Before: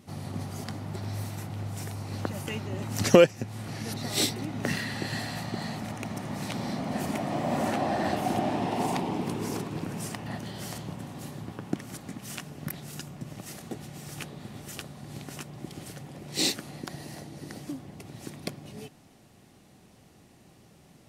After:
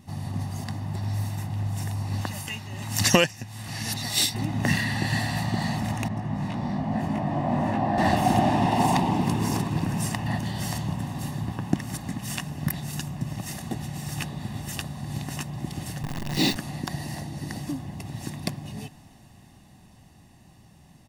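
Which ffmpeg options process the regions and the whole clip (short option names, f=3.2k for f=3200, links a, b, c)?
-filter_complex "[0:a]asettb=1/sr,asplit=3[a][b][c];[a]atrim=end=2.214[d];[b]atrim=start=2.21:end=4.35,asetpts=PTS-STARTPTS,afade=t=in:d=0.004:c=qsin,afade=t=out:st=2.136:d=0.004:c=qsin,tiltshelf=f=1.2k:g=-5.5,tremolo=f=1.2:d=0.46[e];[c]atrim=start=4.346[f];[d][e]acrossfade=d=0.004:c1=hsin:c2=qsin[g];[g][f]acrossfade=d=0.004:c1=qsin:c2=hsin,asettb=1/sr,asplit=3[h][i][j];[h]atrim=end=6.084[k];[i]atrim=start=6.08:end=7.98,asetpts=PTS-STARTPTS,afade=t=in:d=0.004:c=qsin,afade=t=out:st=1.896:d=0.004:c=qsin,lowpass=f=1.4k:p=1,flanger=delay=18.5:depth=2.3:speed=1.1[l];[j]atrim=start=7.976[m];[k][l]acrossfade=d=0.004:c1=hsin:c2=qsin[n];[n][m]acrossfade=d=0.004:c1=qsin:c2=hsin,asettb=1/sr,asplit=3[o][p][q];[o]atrim=end=16.034[r];[p]atrim=start=16.03:end=16.56,asetpts=PTS-STARTPTS,afade=t=in:d=0.004:c=qsin,afade=t=out:st=0.526:d=0.004:c=qsin,highpass=170,lowpass=5.8k,aemphasis=mode=reproduction:type=bsi,acrusher=bits=7:dc=4:mix=0:aa=0.000001[s];[q]atrim=start=16.556[t];[r][s]acrossfade=d=0.004:c1=hsin:c2=qsin[u];[u][t]acrossfade=d=0.004:c1=qsin:c2=hsin,lowshelf=f=88:g=7.5,aecho=1:1:1.1:0.56,dynaudnorm=f=140:g=31:m=5dB"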